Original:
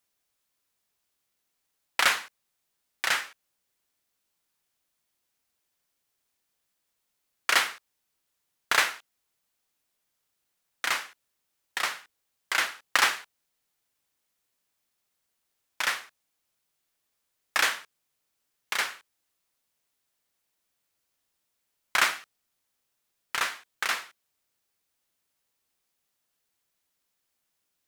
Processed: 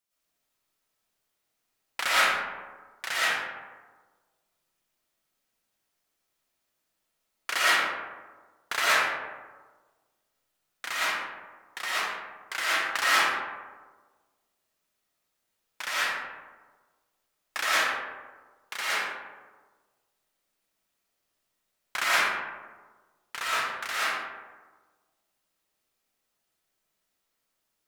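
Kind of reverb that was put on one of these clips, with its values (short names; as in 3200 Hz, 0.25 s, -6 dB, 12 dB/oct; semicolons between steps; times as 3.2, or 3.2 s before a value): digital reverb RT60 1.4 s, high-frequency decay 0.4×, pre-delay 75 ms, DRR -10 dB; gain -8 dB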